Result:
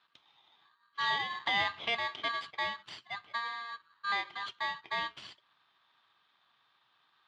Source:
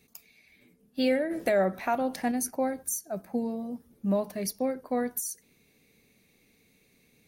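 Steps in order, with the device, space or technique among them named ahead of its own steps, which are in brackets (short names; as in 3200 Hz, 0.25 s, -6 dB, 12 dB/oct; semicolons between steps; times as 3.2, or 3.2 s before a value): ring modulator pedal into a guitar cabinet (polarity switched at an audio rate 1400 Hz; speaker cabinet 99–3700 Hz, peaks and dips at 120 Hz +5 dB, 260 Hz -4 dB, 510 Hz -6 dB, 770 Hz -4 dB, 1700 Hz -5 dB, 3200 Hz +8 dB); gain -4 dB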